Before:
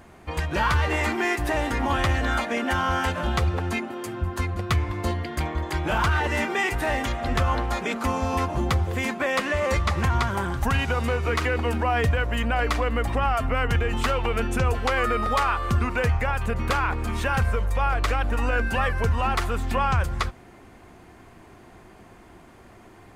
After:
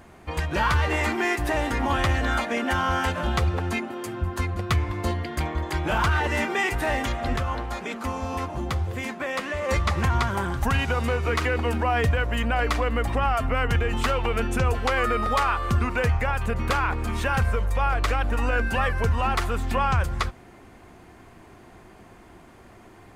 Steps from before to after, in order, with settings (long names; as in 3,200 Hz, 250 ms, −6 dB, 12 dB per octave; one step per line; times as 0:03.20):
0:07.36–0:09.69: flanger 1.8 Hz, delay 6.4 ms, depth 8.7 ms, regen +86%